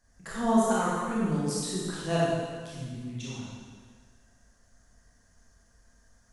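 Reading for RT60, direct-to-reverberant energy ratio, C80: 1.6 s, −7.5 dB, −0.5 dB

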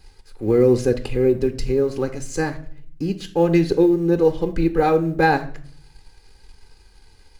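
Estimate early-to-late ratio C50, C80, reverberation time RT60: 14.5 dB, 18.5 dB, 0.50 s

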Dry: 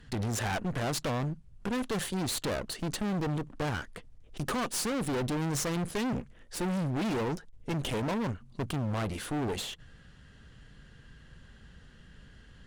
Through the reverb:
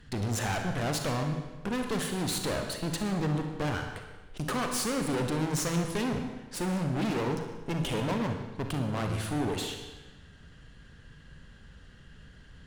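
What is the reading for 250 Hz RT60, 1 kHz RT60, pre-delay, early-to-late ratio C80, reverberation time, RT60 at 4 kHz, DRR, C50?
1.2 s, 1.2 s, 36 ms, 7.5 dB, 1.2 s, 1.1 s, 4.0 dB, 5.0 dB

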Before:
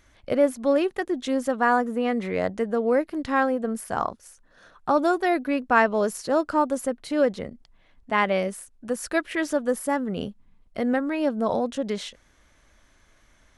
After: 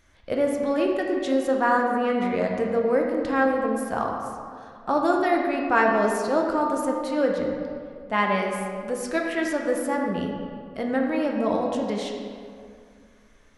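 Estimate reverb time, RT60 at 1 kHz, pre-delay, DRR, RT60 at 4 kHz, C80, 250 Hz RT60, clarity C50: 2.2 s, 2.2 s, 6 ms, 0.0 dB, 1.3 s, 3.5 dB, 2.5 s, 2.5 dB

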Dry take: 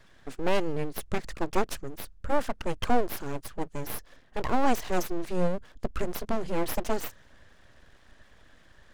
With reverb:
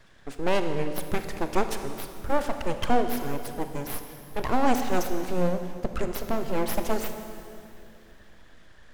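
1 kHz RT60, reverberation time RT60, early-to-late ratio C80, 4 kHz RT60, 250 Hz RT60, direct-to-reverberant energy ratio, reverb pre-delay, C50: 2.4 s, 2.6 s, 8.5 dB, 2.4 s, 3.3 s, 7.0 dB, 26 ms, 7.5 dB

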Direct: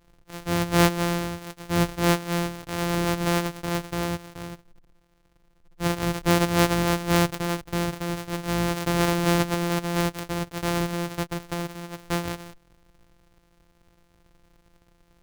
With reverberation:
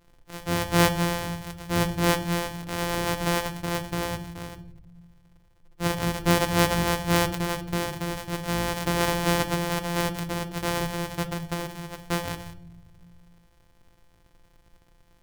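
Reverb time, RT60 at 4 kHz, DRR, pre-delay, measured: 0.70 s, 0.45 s, 10.0 dB, 7 ms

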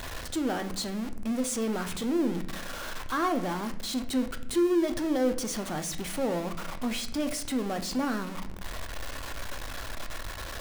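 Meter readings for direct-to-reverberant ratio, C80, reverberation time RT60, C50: 7.0 dB, 16.5 dB, 0.75 s, 13.0 dB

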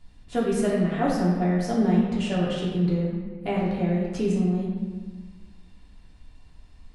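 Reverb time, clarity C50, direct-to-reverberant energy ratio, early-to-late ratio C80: 1.4 s, 0.5 dB, −5.5 dB, 2.5 dB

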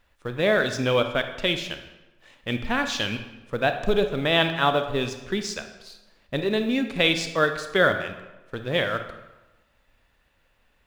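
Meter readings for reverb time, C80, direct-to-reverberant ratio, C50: 1.1 s, 11.5 dB, 7.5 dB, 9.0 dB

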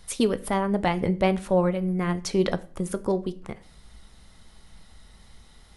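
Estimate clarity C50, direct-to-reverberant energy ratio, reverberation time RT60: 19.5 dB, 12.0 dB, 0.45 s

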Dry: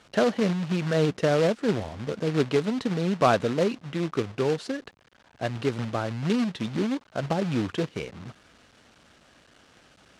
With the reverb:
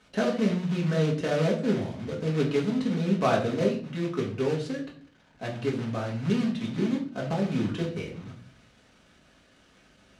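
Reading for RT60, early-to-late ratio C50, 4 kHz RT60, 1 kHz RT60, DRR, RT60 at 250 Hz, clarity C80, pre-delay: 0.50 s, 9.0 dB, 0.40 s, 0.40 s, −3.0 dB, 0.80 s, 13.0 dB, 4 ms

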